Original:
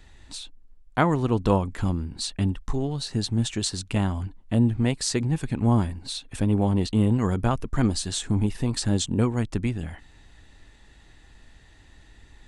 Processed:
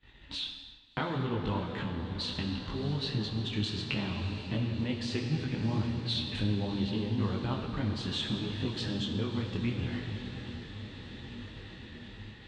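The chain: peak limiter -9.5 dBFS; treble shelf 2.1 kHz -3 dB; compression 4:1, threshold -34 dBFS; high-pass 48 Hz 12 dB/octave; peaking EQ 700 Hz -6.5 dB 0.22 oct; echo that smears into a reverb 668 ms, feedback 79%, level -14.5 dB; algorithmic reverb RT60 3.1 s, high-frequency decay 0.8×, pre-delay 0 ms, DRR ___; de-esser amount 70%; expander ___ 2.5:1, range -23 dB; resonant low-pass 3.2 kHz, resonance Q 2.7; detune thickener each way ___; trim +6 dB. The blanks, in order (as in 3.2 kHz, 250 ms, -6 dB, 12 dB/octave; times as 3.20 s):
3.5 dB, -46 dBFS, 24 cents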